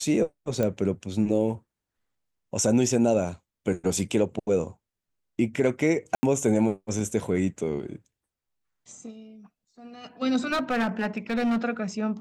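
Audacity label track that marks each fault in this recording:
0.630000	0.630000	pop -14 dBFS
6.150000	6.230000	dropout 80 ms
10.450000	11.580000	clipped -21.5 dBFS

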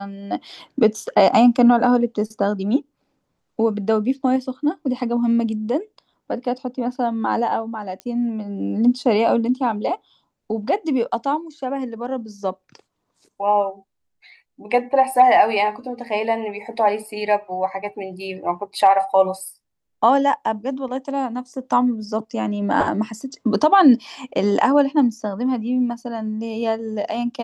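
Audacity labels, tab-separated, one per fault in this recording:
8.000000	8.000000	pop -19 dBFS

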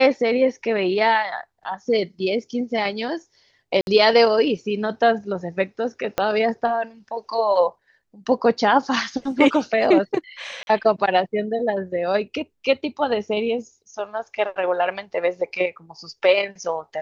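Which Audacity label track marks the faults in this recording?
3.810000	3.870000	dropout 61 ms
6.180000	6.180000	pop -7 dBFS
10.630000	10.670000	dropout 41 ms

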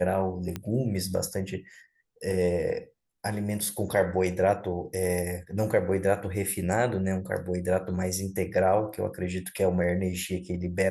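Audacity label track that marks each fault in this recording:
0.560000	0.560000	pop -18 dBFS

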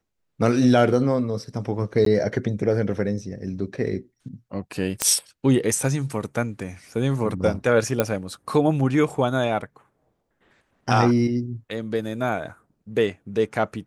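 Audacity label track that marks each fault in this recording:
2.050000	2.060000	dropout 13 ms
5.020000	5.020000	pop -3 dBFS
8.000000	8.000000	pop -6 dBFS

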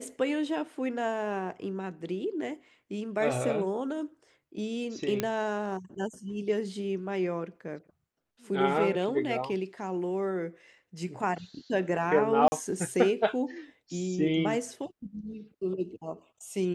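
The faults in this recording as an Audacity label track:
5.200000	5.200000	pop -13 dBFS
12.480000	12.520000	dropout 40 ms

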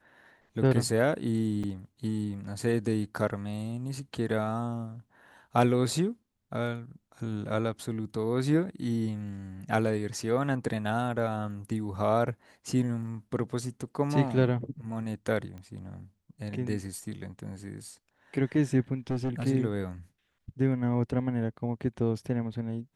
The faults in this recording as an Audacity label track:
1.630000	1.640000	dropout 5.9 ms
15.580000	15.580000	pop -32 dBFS
19.100000	19.470000	clipped -26 dBFS

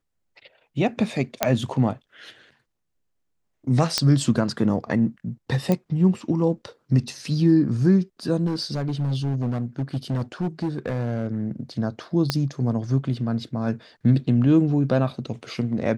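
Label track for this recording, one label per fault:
1.430000	1.430000	pop -3 dBFS
3.980000	3.980000	pop -5 dBFS
5.720000	5.720000	pop -10 dBFS
8.460000	11.440000	clipped -20.5 dBFS
12.300000	12.300000	pop -7 dBFS

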